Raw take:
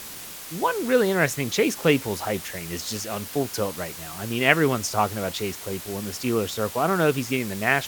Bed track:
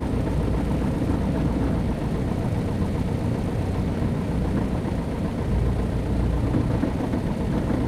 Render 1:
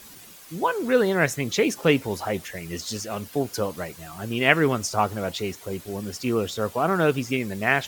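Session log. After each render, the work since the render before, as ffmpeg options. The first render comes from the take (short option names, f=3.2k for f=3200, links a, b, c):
-af "afftdn=nr=10:nf=-39"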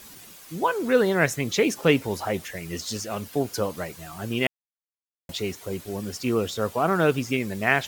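-filter_complex "[0:a]asplit=3[a][b][c];[a]atrim=end=4.47,asetpts=PTS-STARTPTS,afade=t=out:st=4.466:d=0.004:c=hsin[d];[b]atrim=start=4.47:end=5.29,asetpts=PTS-STARTPTS,volume=0[e];[c]atrim=start=5.29,asetpts=PTS-STARTPTS,afade=t=in:d=0.004:c=hsin[f];[d][e][f]concat=n=3:v=0:a=1"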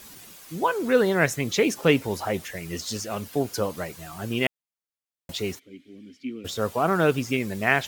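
-filter_complex "[0:a]asplit=3[a][b][c];[a]afade=t=out:st=5.58:d=0.02[d];[b]asplit=3[e][f][g];[e]bandpass=f=270:t=q:w=8,volume=0dB[h];[f]bandpass=f=2.29k:t=q:w=8,volume=-6dB[i];[g]bandpass=f=3.01k:t=q:w=8,volume=-9dB[j];[h][i][j]amix=inputs=3:normalize=0,afade=t=in:st=5.58:d=0.02,afade=t=out:st=6.44:d=0.02[k];[c]afade=t=in:st=6.44:d=0.02[l];[d][k][l]amix=inputs=3:normalize=0"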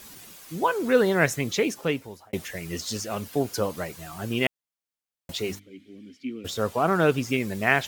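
-filter_complex "[0:a]asettb=1/sr,asplit=3[a][b][c];[a]atrim=end=5.394[d];[b]atrim=start=5.39:end=5.89,asetpts=PTS-STARTPTS,afade=t=in:d=0.004:c=qsin,afade=t=out:st=0.496:d=0.004:c=qsin,bandreject=f=50:t=h:w=6,bandreject=f=100:t=h:w=6,bandreject=f=150:t=h:w=6,bandreject=f=200:t=h:w=6,bandreject=f=250:t=h:w=6,bandreject=f=300:t=h:w=6[e];[c]atrim=start=5.886[f];[d][e]acrossfade=d=0.004:c1=hsin:c2=qsin[g];[g][f]acrossfade=d=0.004:c1=qsin:c2=hsin,asettb=1/sr,asplit=3[h][i][j];[h]atrim=end=6.624[k];[i]atrim=start=6.62:end=7.23,asetpts=PTS-STARTPTS,afade=t=in:d=0.004:c=qsin,afade=t=out:st=0.606:d=0.004:c=qsin,highshelf=f=12k:g=-5.5[l];[j]atrim=start=7.226[m];[k][l]acrossfade=d=0.004:c1=hsin:c2=qsin[n];[n][m]acrossfade=d=0.004:c1=qsin:c2=hsin,asplit=2[o][p];[o]atrim=end=2.33,asetpts=PTS-STARTPTS,afade=t=out:st=1.37:d=0.96[q];[p]atrim=start=2.33,asetpts=PTS-STARTPTS,afade=t=in:d=0.004:c=hsin[r];[q][r]concat=n=2:v=0:a=1"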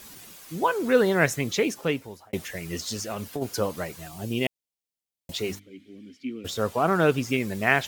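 -filter_complex "[0:a]asplit=3[a][b][c];[a]afade=t=out:st=2.83:d=0.02[d];[b]acompressor=threshold=-26dB:ratio=6:attack=3.2:release=140:knee=1:detection=peak,afade=t=in:st=2.83:d=0.02,afade=t=out:st=3.41:d=0.02[e];[c]afade=t=in:st=3.41:d=0.02[f];[d][e][f]amix=inputs=3:normalize=0,asettb=1/sr,asplit=3[g][h][i];[g]atrim=end=4.084[j];[h]atrim=start=4.08:end=5.32,asetpts=PTS-STARTPTS,afade=t=in:d=0.004:c=qsin,afade=t=out:st=1.236:d=0.004:c=qsin,equalizer=f=1.4k:w=1.5:g=-13.5[k];[i]atrim=start=5.316[l];[j][k]acrossfade=d=0.004:c1=hsin:c2=qsin[m];[m][l]acrossfade=d=0.004:c1=qsin:c2=hsin"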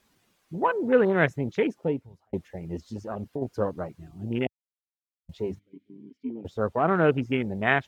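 -af "afwtdn=0.0316,lowpass=f=2.7k:p=1"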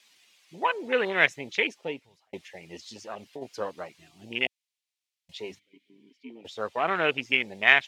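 -af "aexciter=amount=5.8:drive=6.4:freq=2.1k,bandpass=f=1.4k:t=q:w=0.67:csg=0"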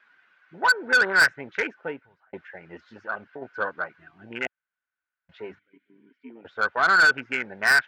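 -af "lowpass=f=1.5k:t=q:w=15,asoftclip=type=tanh:threshold=-13.5dB"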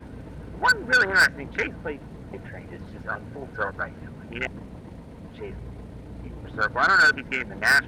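-filter_complex "[1:a]volume=-16dB[a];[0:a][a]amix=inputs=2:normalize=0"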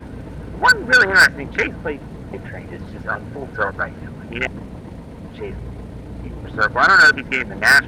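-af "volume=7dB"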